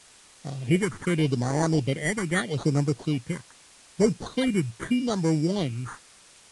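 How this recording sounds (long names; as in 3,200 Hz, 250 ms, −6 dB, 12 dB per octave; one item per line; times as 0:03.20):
aliases and images of a low sample rate 2,600 Hz, jitter 0%
phaser sweep stages 4, 0.8 Hz, lowest notch 600–3,200 Hz
a quantiser's noise floor 8 bits, dither triangular
Ogg Vorbis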